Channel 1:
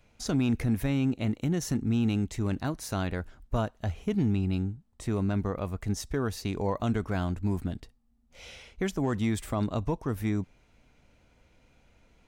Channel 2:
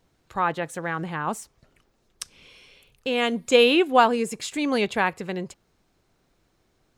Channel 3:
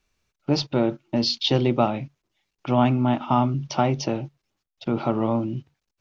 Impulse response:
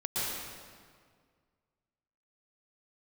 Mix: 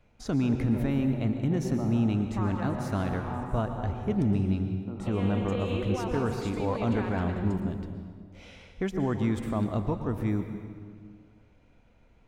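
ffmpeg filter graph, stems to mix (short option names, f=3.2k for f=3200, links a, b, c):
-filter_complex "[0:a]volume=-1.5dB,asplit=2[a][b];[b]volume=-12dB[c];[1:a]agate=range=-33dB:threshold=-46dB:ratio=3:detection=peak,alimiter=limit=-12dB:level=0:latency=1,adelay=2000,volume=-7.5dB,asplit=2[d][e];[e]volume=-13.5dB[f];[2:a]lowpass=f=1.8k:w=0.5412,lowpass=f=1.8k:w=1.3066,volume=-18.5dB,asplit=3[g][h][i];[h]volume=-7.5dB[j];[i]apad=whole_len=395712[k];[d][k]sidechaincompress=threshold=-49dB:ratio=8:attack=16:release=342[l];[l][g]amix=inputs=2:normalize=0,acompressor=threshold=-37dB:ratio=6,volume=0dB[m];[3:a]atrim=start_sample=2205[n];[c][f][j]amix=inputs=3:normalize=0[o];[o][n]afir=irnorm=-1:irlink=0[p];[a][m][p]amix=inputs=3:normalize=0,highshelf=f=3.4k:g=-12"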